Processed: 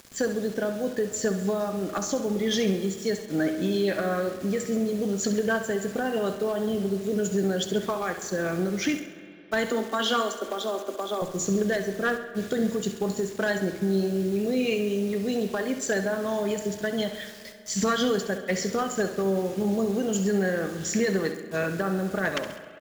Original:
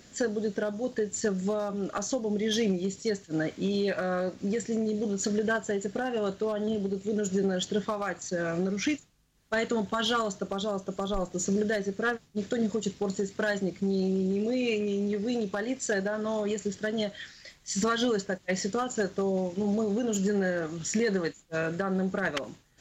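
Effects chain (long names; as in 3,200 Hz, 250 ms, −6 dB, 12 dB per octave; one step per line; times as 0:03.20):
0:09.70–0:11.22: Butterworth high-pass 220 Hz 96 dB per octave
bit-depth reduction 8 bits, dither none
on a send: repeating echo 67 ms, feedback 52%, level −11 dB
on the sum: spring reverb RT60 2.9 s, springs 35/54 ms, chirp 70 ms, DRR 12.5 dB
level +2 dB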